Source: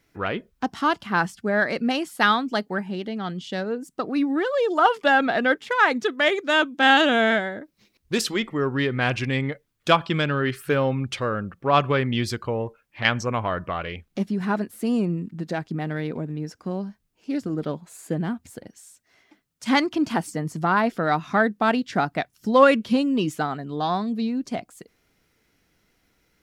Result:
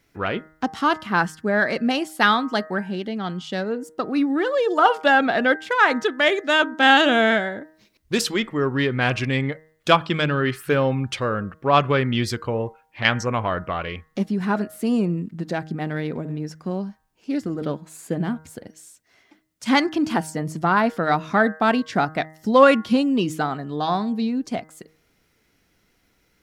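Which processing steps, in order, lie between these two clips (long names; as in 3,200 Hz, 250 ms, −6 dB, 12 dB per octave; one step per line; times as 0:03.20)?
hum removal 157.2 Hz, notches 13
level +2 dB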